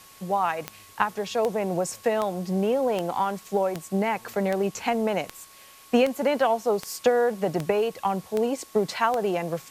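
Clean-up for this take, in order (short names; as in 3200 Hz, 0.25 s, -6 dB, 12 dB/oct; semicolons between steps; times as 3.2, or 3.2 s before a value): de-click; notch 1100 Hz, Q 30; denoiser 21 dB, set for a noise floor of -50 dBFS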